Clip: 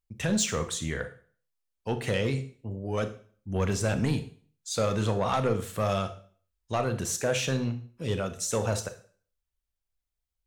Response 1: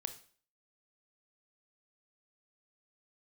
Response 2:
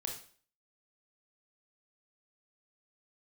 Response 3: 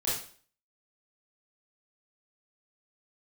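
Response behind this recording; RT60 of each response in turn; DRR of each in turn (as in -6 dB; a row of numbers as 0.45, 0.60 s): 1; 0.45, 0.45, 0.45 s; 8.5, 1.0, -9.0 dB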